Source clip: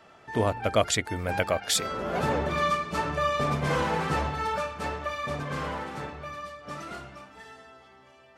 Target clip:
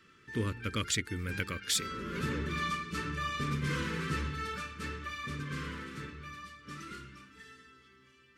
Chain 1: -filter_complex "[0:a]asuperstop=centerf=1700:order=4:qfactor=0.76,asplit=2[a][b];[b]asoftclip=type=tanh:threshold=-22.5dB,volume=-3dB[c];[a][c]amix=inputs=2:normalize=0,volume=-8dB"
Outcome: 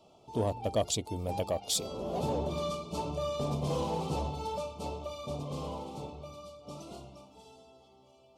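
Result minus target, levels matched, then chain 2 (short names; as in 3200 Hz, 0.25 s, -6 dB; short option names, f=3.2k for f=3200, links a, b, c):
2000 Hz band -17.0 dB
-filter_complex "[0:a]asuperstop=centerf=720:order=4:qfactor=0.76,asplit=2[a][b];[b]asoftclip=type=tanh:threshold=-22.5dB,volume=-3dB[c];[a][c]amix=inputs=2:normalize=0,volume=-8dB"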